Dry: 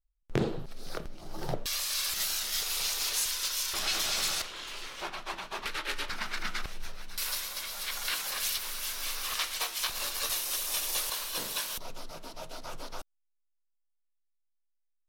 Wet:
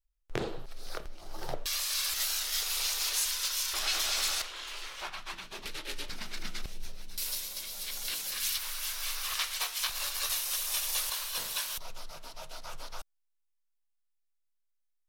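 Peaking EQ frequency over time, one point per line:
peaking EQ -11.5 dB 1.9 oct
4.88 s 180 Hz
5.65 s 1.3 kHz
8.21 s 1.3 kHz
8.63 s 280 Hz

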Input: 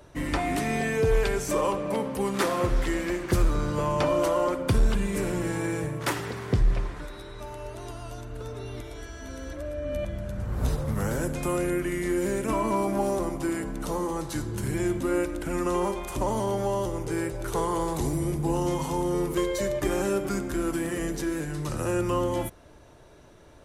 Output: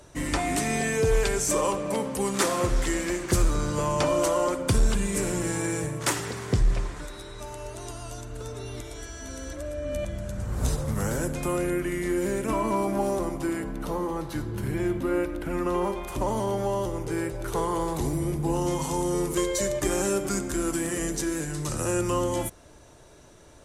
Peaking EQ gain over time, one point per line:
peaking EQ 7.6 kHz 1.2 oct
10.73 s +10.5 dB
11.51 s 0 dB
13.37 s 0 dB
13.97 s -9.5 dB
15.72 s -9.5 dB
16.27 s -1 dB
18.38 s -1 dB
19.02 s +10 dB

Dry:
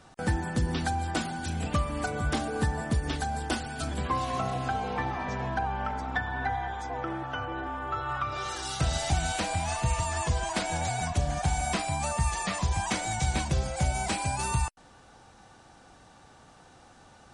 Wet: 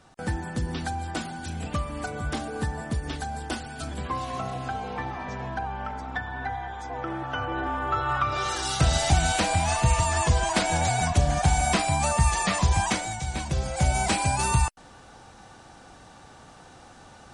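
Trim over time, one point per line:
6.70 s -1.5 dB
7.68 s +6 dB
12.83 s +6 dB
13.23 s -4 dB
13.94 s +5.5 dB

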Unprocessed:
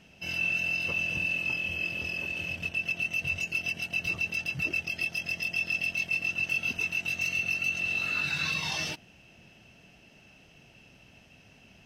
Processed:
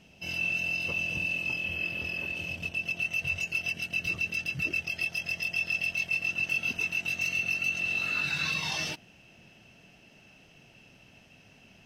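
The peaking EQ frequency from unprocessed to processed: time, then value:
peaking EQ -5 dB 0.82 oct
1.6 kHz
from 1.64 s 6.9 kHz
from 2.35 s 1.7 kHz
from 2.99 s 260 Hz
from 3.74 s 850 Hz
from 4.82 s 260 Hz
from 6.28 s 63 Hz

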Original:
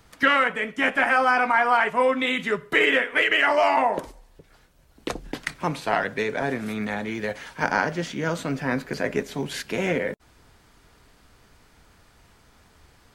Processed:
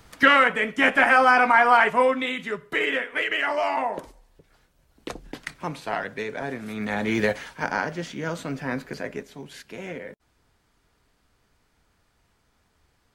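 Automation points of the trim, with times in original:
1.92 s +3 dB
2.36 s -5 dB
6.67 s -5 dB
7.20 s +8 dB
7.58 s -3.5 dB
8.86 s -3.5 dB
9.35 s -11 dB

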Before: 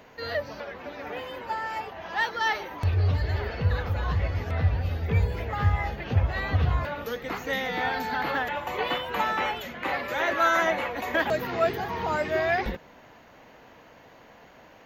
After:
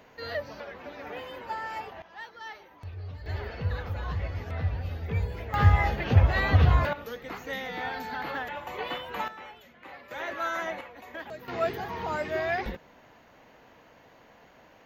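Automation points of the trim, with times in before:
-3.5 dB
from 2.02 s -16 dB
from 3.26 s -5.5 dB
from 5.54 s +4 dB
from 6.93 s -6 dB
from 9.28 s -17 dB
from 10.11 s -9 dB
from 10.81 s -15 dB
from 11.48 s -4 dB

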